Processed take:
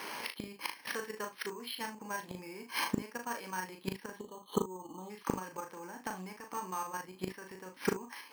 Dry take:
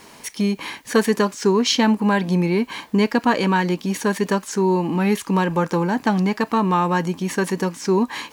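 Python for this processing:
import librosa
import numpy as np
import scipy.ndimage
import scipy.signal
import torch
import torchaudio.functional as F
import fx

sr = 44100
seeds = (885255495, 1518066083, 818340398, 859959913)

p1 = fx.notch(x, sr, hz=670.0, q=16.0)
p2 = fx.spec_box(p1, sr, start_s=4.16, length_s=0.94, low_hz=1300.0, high_hz=2900.0, gain_db=-28)
p3 = fx.weighting(p2, sr, curve='A')
p4 = fx.level_steps(p3, sr, step_db=10)
p5 = fx.gate_flip(p4, sr, shuts_db=-24.0, range_db=-25)
p6 = p5 + fx.room_early_taps(p5, sr, ms=(38, 59, 75), db=(-5.0, -15.5, -16.0), dry=0)
p7 = np.repeat(scipy.signal.resample_poly(p6, 1, 6), 6)[:len(p6)]
y = p7 * 10.0 ** (8.0 / 20.0)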